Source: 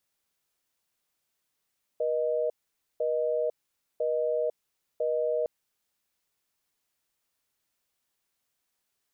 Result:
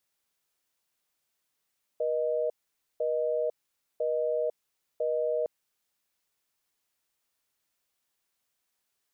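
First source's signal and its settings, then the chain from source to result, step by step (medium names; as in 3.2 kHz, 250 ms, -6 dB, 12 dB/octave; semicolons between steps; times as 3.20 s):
call progress tone busy tone, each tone -27.5 dBFS 3.46 s
bass shelf 330 Hz -3 dB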